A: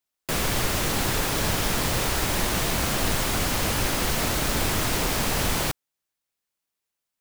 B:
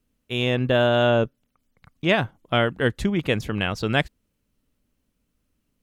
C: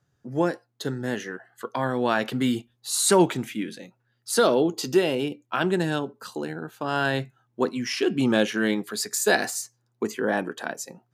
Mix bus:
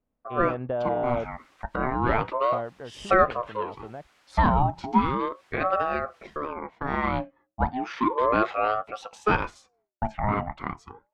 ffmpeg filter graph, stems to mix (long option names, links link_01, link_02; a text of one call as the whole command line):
ffmpeg -i stem1.wav -i stem2.wav -i stem3.wav -filter_complex "[0:a]aderivative,crystalizer=i=0.5:c=0,adelay=750,volume=-17dB[link_01];[1:a]deesser=0.9,equalizer=frequency=710:width_type=o:width=1.1:gain=12,acompressor=threshold=-18dB:ratio=3,volume=-9.5dB,afade=type=out:start_time=2.5:duration=0.33:silence=0.354813[link_02];[2:a]agate=range=-33dB:threshold=-52dB:ratio=3:detection=peak,aeval=exprs='val(0)*sin(2*PI*690*n/s+690*0.4/0.34*sin(2*PI*0.34*n/s))':channel_layout=same,volume=2.5dB,asplit=2[link_03][link_04];[link_04]apad=whole_len=351009[link_05];[link_01][link_05]sidechaincompress=threshold=-39dB:ratio=8:attack=10:release=102[link_06];[link_06][link_02][link_03]amix=inputs=3:normalize=0,lowpass=1800" out.wav